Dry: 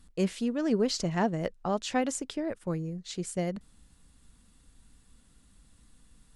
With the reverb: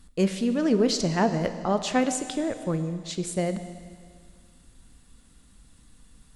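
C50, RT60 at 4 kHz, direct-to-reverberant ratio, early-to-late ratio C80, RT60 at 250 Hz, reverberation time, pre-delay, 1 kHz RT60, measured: 10.0 dB, 1.9 s, 9.0 dB, 11.0 dB, 2.0 s, 2.0 s, 17 ms, 2.0 s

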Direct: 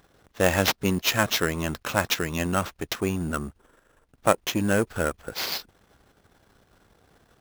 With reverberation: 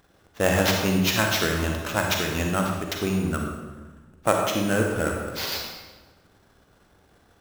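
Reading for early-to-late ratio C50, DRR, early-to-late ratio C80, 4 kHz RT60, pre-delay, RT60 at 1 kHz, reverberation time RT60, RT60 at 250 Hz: 2.0 dB, 1.0 dB, 4.0 dB, 1.0 s, 36 ms, 1.2 s, 1.3 s, 1.6 s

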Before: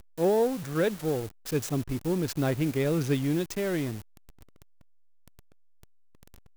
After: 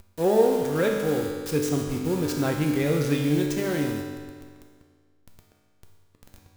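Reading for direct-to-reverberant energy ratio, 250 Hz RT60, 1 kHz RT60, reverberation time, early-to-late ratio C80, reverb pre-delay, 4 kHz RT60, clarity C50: 0.0 dB, 1.8 s, 1.8 s, 1.8 s, 4.0 dB, 4 ms, 1.6 s, 2.5 dB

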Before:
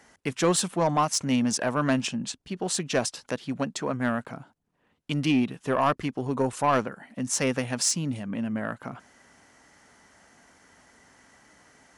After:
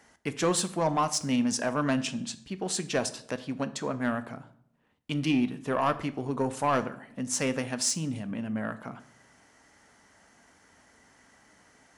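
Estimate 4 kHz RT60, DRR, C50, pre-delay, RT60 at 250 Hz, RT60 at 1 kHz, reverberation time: 0.50 s, 11.0 dB, 16.0 dB, 3 ms, 0.85 s, 0.60 s, 0.70 s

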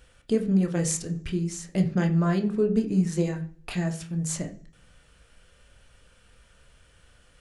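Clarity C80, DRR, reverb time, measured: 17.5 dB, 4.0 dB, 0.45 s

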